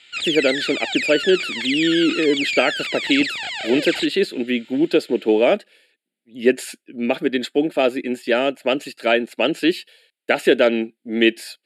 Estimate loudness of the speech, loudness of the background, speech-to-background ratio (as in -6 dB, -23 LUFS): -20.0 LUFS, -23.5 LUFS, 3.5 dB